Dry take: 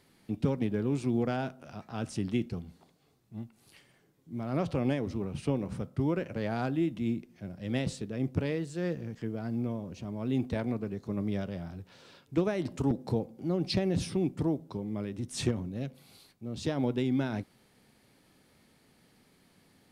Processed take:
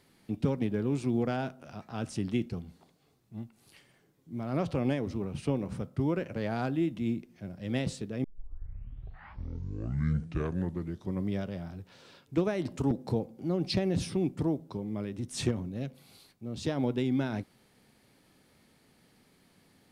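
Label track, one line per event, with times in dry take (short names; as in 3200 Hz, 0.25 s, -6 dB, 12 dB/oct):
8.240000	8.240000	tape start 3.15 s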